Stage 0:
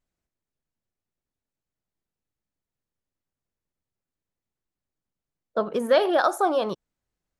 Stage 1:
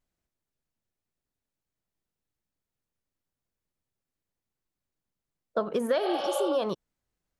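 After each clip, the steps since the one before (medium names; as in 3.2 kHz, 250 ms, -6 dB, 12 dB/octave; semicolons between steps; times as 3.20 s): spectral replace 6.06–6.49 s, 440–5200 Hz both; compression 6:1, threshold -23 dBFS, peak gain reduction 9 dB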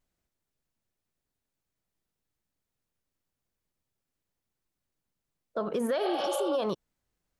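peak limiter -23.5 dBFS, peak gain reduction 7.5 dB; trim +2 dB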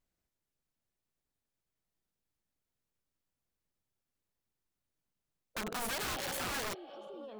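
feedback echo behind a low-pass 695 ms, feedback 36%, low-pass 3.4 kHz, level -14 dB; dynamic bell 970 Hz, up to -7 dB, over -45 dBFS, Q 0.92; integer overflow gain 28.5 dB; trim -4 dB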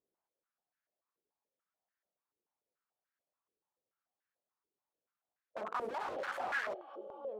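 step-sequenced band-pass 6.9 Hz 420–1600 Hz; trim +9 dB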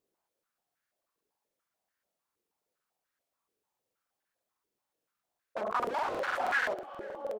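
feedback delay 485 ms, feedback 41%, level -23.5 dB; crackling interface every 0.16 s, samples 2048, repeat, from 0.66 s; trim +6.5 dB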